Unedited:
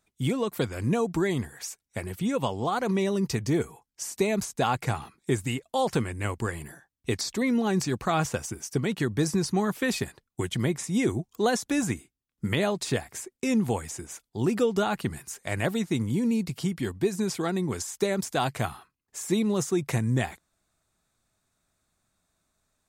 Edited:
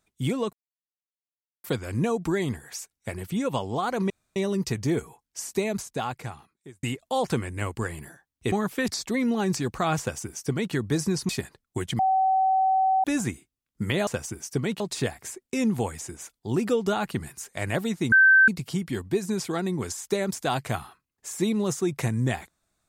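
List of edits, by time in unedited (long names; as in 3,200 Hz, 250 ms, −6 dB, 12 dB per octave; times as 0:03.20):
0:00.53: splice in silence 1.11 s
0:02.99: splice in room tone 0.26 s
0:04.08–0:05.46: fade out
0:08.27–0:09.00: duplicate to 0:12.70
0:09.56–0:09.92: move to 0:07.15
0:10.62–0:11.67: beep over 762 Hz −18.5 dBFS
0:16.02–0:16.38: beep over 1,550 Hz −12.5 dBFS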